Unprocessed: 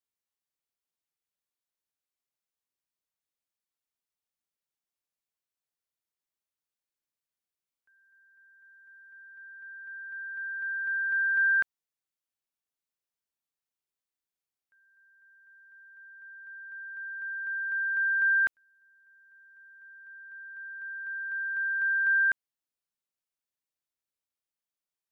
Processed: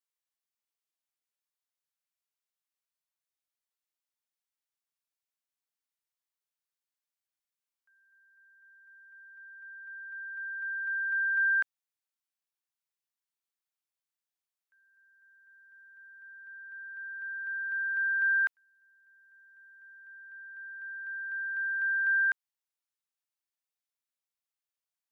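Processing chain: high-pass 720 Hz; trim -2 dB

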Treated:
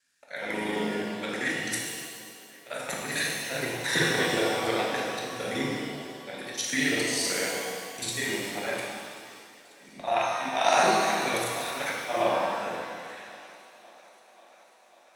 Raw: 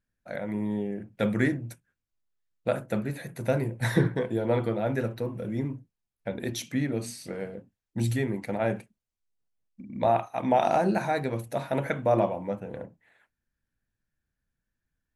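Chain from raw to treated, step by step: time reversed locally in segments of 38 ms; frequency weighting ITU-R 468; in parallel at +0.5 dB: compression, threshold -38 dBFS, peak gain reduction 17 dB; on the sum: slow attack 222 ms; on a send: thinning echo 543 ms, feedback 75%, high-pass 160 Hz, level -23.5 dB; on the sum: pitch-shifted reverb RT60 1.8 s, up +7 st, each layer -8 dB, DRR -3 dB; trim +1.5 dB

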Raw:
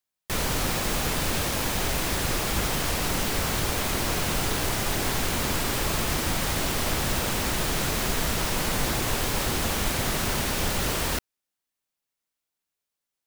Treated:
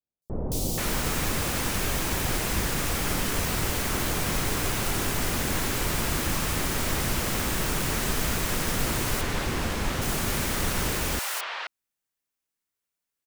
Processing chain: 8.99–9.80 s: treble shelf 6.8 kHz -11 dB; three bands offset in time lows, highs, mids 220/480 ms, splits 700/3900 Hz

